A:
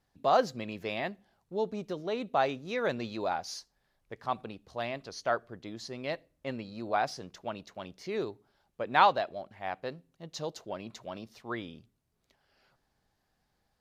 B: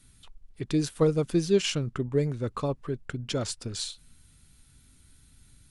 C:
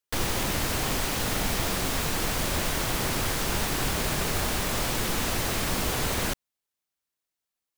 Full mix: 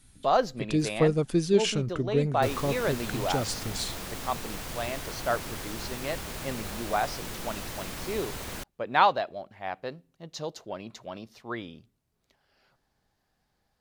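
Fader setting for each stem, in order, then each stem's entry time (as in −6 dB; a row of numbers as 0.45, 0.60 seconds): +1.5, 0.0, −10.0 decibels; 0.00, 0.00, 2.30 seconds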